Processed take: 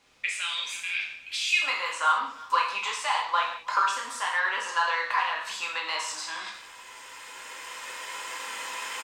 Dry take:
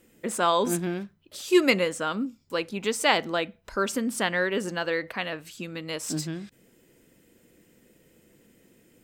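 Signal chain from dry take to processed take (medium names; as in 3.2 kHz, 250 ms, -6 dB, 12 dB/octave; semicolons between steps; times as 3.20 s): recorder AGC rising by 8 dB/s; gate with hold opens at -43 dBFS; tilt EQ +3.5 dB/octave; compression 4:1, threshold -29 dBFS, peak gain reduction 14.5 dB; saturation -22 dBFS, distortion -18 dB; resonant high-pass 2.4 kHz, resonance Q 6.9, from 1.62 s 1 kHz; word length cut 10-bit, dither triangular; distance through air 110 m; speakerphone echo 330 ms, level -18 dB; gated-style reverb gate 230 ms falling, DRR -2.5 dB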